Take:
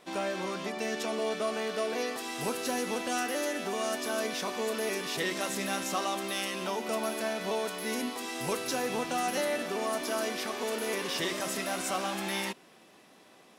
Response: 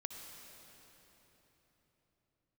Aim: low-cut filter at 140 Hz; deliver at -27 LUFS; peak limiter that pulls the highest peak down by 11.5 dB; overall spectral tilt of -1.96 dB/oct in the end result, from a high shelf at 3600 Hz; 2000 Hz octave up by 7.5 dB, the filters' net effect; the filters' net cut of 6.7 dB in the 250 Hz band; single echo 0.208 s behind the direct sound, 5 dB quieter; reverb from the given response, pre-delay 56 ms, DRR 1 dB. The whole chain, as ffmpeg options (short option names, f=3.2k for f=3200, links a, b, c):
-filter_complex "[0:a]highpass=140,equalizer=f=250:t=o:g=-8.5,equalizer=f=2k:t=o:g=8,highshelf=f=3.6k:g=4.5,alimiter=level_in=1.5dB:limit=-24dB:level=0:latency=1,volume=-1.5dB,aecho=1:1:208:0.562,asplit=2[a][b];[1:a]atrim=start_sample=2205,adelay=56[c];[b][c]afir=irnorm=-1:irlink=0,volume=1dB[d];[a][d]amix=inputs=2:normalize=0,volume=3.5dB"